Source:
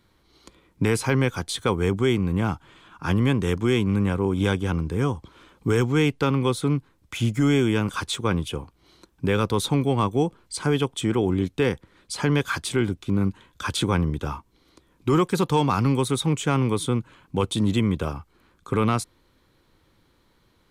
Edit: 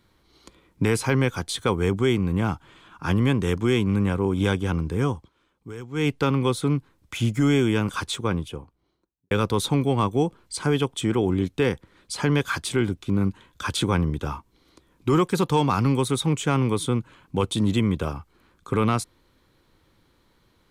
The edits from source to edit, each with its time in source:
5.12–6.09 dip -16 dB, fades 0.18 s
7.98–9.31 studio fade out

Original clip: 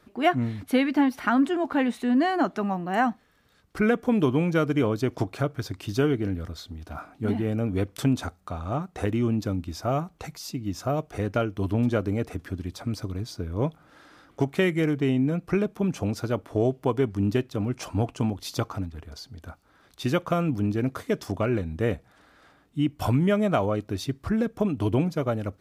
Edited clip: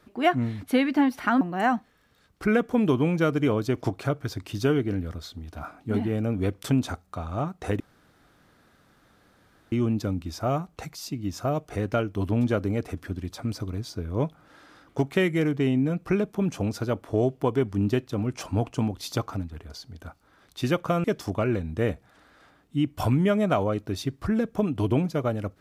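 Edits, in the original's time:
1.41–2.75 cut
9.14 insert room tone 1.92 s
20.46–21.06 cut

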